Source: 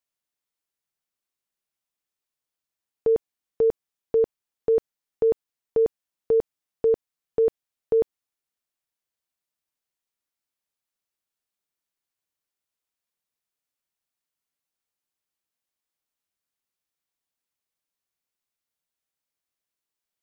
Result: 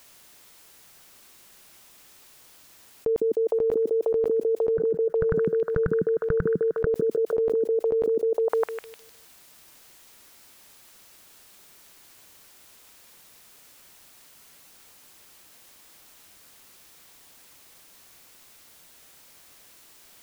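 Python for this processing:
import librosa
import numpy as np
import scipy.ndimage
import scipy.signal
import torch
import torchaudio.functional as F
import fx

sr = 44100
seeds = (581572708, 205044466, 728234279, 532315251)

y = fx.curve_eq(x, sr, hz=(170.0, 260.0, 830.0, 1500.0, 2300.0), db=(0, -19, -25, 9, -18), at=(4.77, 6.87))
y = fx.echo_stepped(y, sr, ms=153, hz=290.0, octaves=0.7, feedback_pct=70, wet_db=-6.5)
y = fx.env_flatten(y, sr, amount_pct=100)
y = F.gain(torch.from_numpy(y), -5.0).numpy()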